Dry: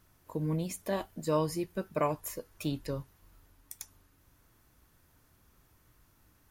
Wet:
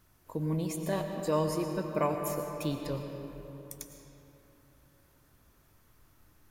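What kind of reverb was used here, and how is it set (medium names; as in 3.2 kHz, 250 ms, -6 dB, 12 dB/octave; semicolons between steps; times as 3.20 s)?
algorithmic reverb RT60 3.5 s, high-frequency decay 0.55×, pre-delay 70 ms, DRR 4 dB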